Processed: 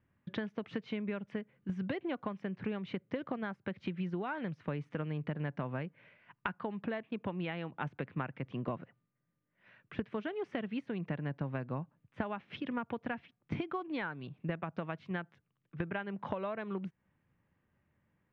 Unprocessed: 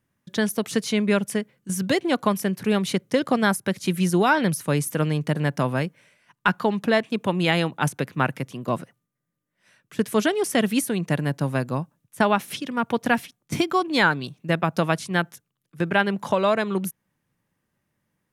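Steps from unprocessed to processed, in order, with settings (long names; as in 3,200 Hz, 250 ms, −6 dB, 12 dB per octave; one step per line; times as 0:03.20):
downward compressor 16 to 1, threshold −32 dBFS, peak gain reduction 19.5 dB
low-pass filter 2,800 Hz 24 dB per octave
parametric band 74 Hz +8 dB 0.77 octaves
level −1.5 dB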